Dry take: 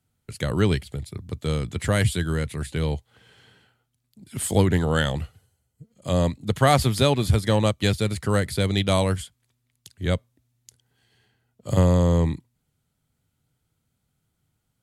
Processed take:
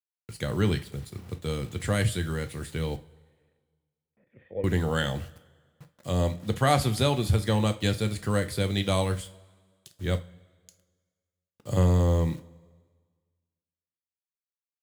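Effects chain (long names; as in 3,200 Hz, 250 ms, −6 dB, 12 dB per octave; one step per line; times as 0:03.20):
bit-depth reduction 8 bits, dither none
0:02.96–0:04.64: formant resonators in series e
coupled-rooms reverb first 0.29 s, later 1.6 s, from −20 dB, DRR 7.5 dB
level −5 dB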